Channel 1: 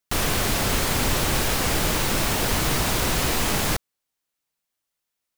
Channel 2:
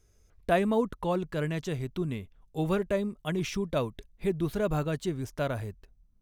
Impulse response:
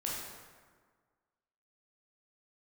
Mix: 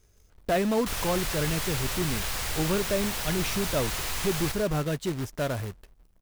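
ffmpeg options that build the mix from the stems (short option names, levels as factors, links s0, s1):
-filter_complex "[0:a]equalizer=f=270:w=0.63:g=-13,adelay=750,volume=0.447,asplit=2[s0][s1];[s1]volume=0.447[s2];[1:a]acrusher=bits=2:mode=log:mix=0:aa=0.000001,volume=1.33[s3];[s2]aecho=0:1:109:1[s4];[s0][s3][s4]amix=inputs=3:normalize=0,asoftclip=type=tanh:threshold=0.126"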